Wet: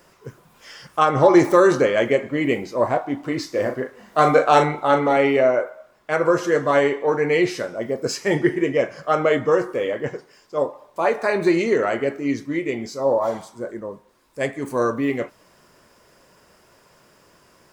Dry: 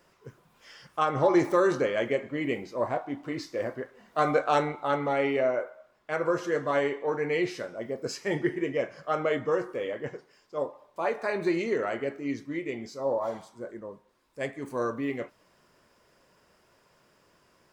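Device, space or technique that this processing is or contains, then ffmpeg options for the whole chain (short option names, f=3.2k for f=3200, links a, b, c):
exciter from parts: -filter_complex "[0:a]asettb=1/sr,asplit=3[a][b][c];[a]atrim=end=3.514[d];[b]atrim=start=3.51:end=5.17,asetpts=PTS-STARTPTS,afade=t=in:d=0.004:c=qsin,afade=t=out:st=1.656:d=0.004:c=qsin,asplit=2[e][f];[f]adelay=39,volume=-8dB[g];[e][g]amix=inputs=2:normalize=0,atrim=end_sample=73206[h];[c]atrim=start=5.166[i];[d][h]acrossfade=d=0.004:c1=hsin:c2=qsin[j];[j][i]acrossfade=d=0.004:c1=qsin:c2=hsin,asplit=2[k][l];[l]highpass=4.8k,asoftclip=type=tanh:threshold=-39dB,volume=-6dB[m];[k][m]amix=inputs=2:normalize=0,volume=9dB"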